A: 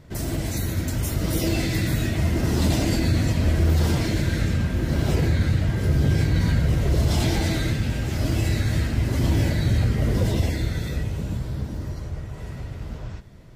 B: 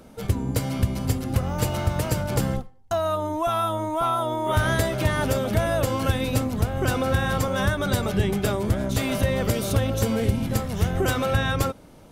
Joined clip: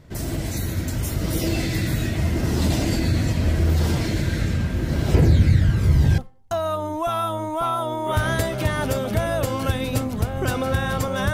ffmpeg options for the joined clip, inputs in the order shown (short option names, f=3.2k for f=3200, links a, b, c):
-filter_complex "[0:a]asettb=1/sr,asplit=3[a][b][c];[a]atrim=end=5.144[d];[b]atrim=start=5.14:end=6.18,asetpts=PTS-STARTPTS,afade=t=in:d=0.004:c=qsin,afade=t=out:st=1.036:d=0.004:c=qsin,aphaser=in_gain=1:out_gain=1:delay=3.1:decay=0.5:speed=0.19:type=triangular[e];[c]atrim=start=6.176[f];[d][e]acrossfade=d=0.004:c1=hsin:c2=qsin[g];[g][f]acrossfade=d=0.004:c1=qsin:c2=hsin,apad=whole_dur=11.33,atrim=end=11.33,atrim=end=6.182[h];[1:a]atrim=start=2.578:end=7.73[i];[h][i]acrossfade=d=0.004:c1=hsin:c2=hsin"